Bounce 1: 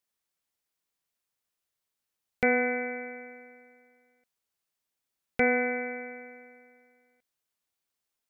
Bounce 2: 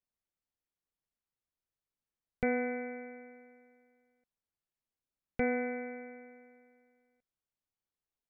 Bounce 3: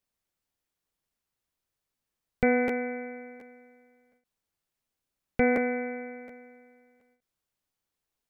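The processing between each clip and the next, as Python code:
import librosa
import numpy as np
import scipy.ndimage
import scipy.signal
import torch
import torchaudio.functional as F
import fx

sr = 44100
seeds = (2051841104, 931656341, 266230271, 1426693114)

y1 = fx.tilt_eq(x, sr, slope=-2.5)
y1 = F.gain(torch.from_numpy(y1), -8.5).numpy()
y2 = fx.buffer_crackle(y1, sr, first_s=0.51, period_s=0.72, block=512, kind='repeat')
y2 = fx.end_taper(y2, sr, db_per_s=190.0)
y2 = F.gain(torch.from_numpy(y2), 7.5).numpy()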